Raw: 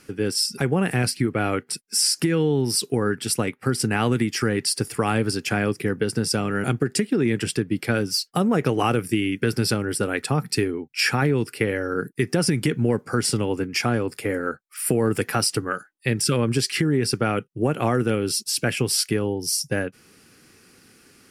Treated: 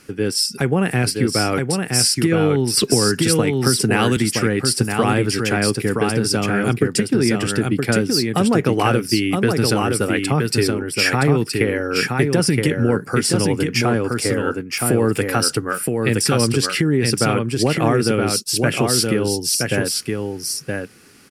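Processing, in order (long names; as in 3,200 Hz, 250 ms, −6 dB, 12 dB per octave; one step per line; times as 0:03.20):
single-tap delay 970 ms −4 dB
0:02.77–0:04.17: multiband upward and downward compressor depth 100%
level +3.5 dB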